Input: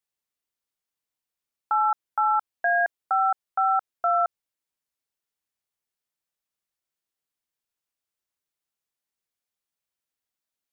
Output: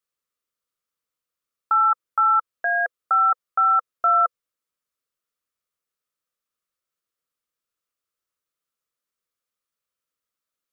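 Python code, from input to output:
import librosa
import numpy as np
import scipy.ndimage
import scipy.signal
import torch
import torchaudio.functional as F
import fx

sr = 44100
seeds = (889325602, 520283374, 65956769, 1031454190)

y = fx.graphic_eq_31(x, sr, hz=(500, 800, 1250), db=(7, -8, 10))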